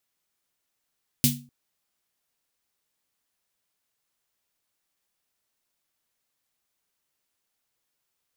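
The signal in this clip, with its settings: snare drum length 0.25 s, tones 140 Hz, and 240 Hz, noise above 2600 Hz, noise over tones 2.5 dB, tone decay 0.39 s, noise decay 0.24 s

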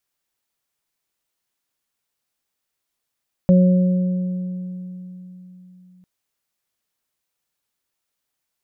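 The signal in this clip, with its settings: additive tone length 2.55 s, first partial 182 Hz, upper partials -19/-8 dB, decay 3.92 s, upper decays 2.48/2.19 s, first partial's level -9 dB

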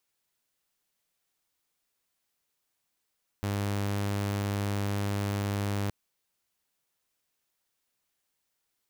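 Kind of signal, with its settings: tone saw 101 Hz -25.5 dBFS 2.47 s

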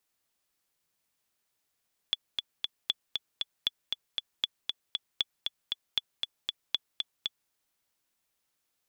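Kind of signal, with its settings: metronome 234 bpm, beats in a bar 3, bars 7, 3430 Hz, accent 4 dB -13 dBFS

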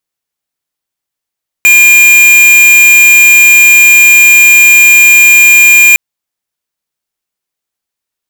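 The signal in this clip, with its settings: tone square 2410 Hz -3 dBFS 4.31 s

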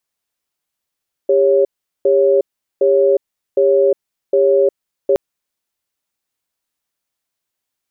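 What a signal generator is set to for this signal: cadence 399 Hz, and 553 Hz, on 0.36 s, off 0.40 s, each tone -12 dBFS 3.87 s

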